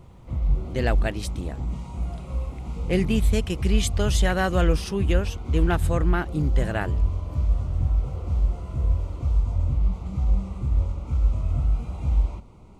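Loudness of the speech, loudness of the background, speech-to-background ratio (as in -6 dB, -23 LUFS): -27.5 LUFS, -27.0 LUFS, -0.5 dB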